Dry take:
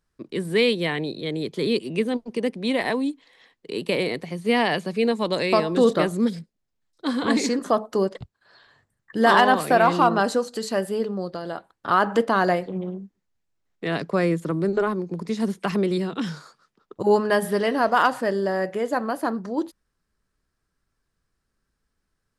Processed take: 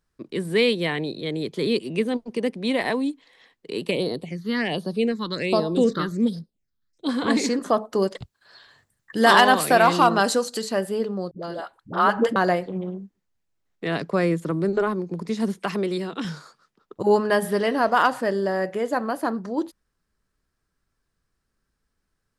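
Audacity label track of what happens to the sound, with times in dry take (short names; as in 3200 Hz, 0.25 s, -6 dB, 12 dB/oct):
3.910000	7.090000	phaser stages 6, 1.3 Hz, lowest notch 630–2300 Hz
8.020000	10.620000	high shelf 2600 Hz +9 dB
11.310000	12.360000	dispersion highs, late by 91 ms, half as late at 380 Hz
15.630000	16.250000	low shelf 180 Hz -10 dB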